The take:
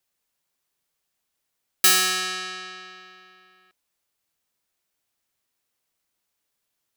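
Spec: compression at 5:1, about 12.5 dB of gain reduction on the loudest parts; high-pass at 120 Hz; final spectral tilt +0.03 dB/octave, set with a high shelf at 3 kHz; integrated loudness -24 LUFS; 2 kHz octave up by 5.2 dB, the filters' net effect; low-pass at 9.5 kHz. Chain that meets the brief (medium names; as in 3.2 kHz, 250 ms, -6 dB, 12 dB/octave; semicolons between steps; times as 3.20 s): high-pass 120 Hz; low-pass 9.5 kHz; peaking EQ 2 kHz +4 dB; treble shelf 3 kHz +7 dB; compression 5:1, threshold -24 dBFS; trim +3 dB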